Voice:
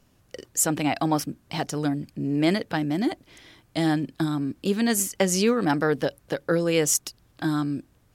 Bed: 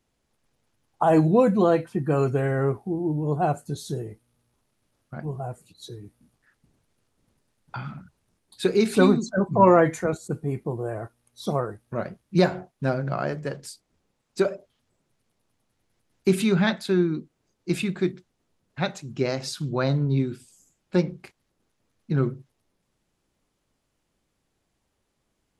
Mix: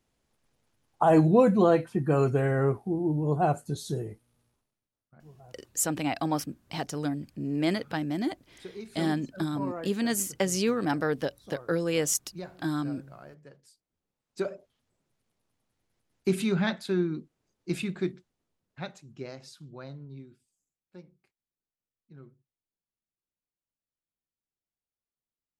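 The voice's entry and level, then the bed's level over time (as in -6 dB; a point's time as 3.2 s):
5.20 s, -5.0 dB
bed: 4.47 s -1.5 dB
4.9 s -21 dB
13.61 s -21 dB
14.64 s -5.5 dB
18.05 s -5.5 dB
20.86 s -27 dB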